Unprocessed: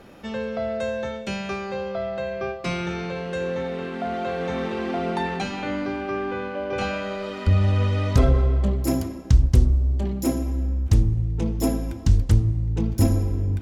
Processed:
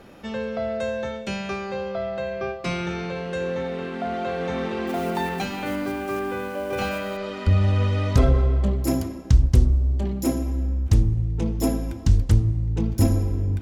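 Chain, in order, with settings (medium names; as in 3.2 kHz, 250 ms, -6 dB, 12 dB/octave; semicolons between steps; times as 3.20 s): 4.87–7.17 s: block-companded coder 5-bit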